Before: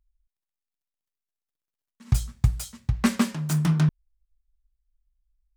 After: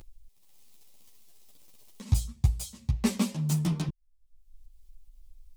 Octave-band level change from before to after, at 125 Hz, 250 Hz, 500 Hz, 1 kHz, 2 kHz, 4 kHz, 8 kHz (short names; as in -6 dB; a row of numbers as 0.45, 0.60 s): -4.5, -5.0, -2.0, -8.0, -9.0, -3.0, -2.0 dB